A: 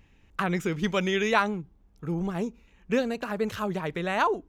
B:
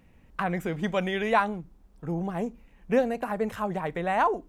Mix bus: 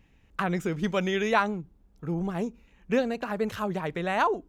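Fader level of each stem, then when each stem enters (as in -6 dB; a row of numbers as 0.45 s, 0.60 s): -3.0 dB, -10.5 dB; 0.00 s, 0.00 s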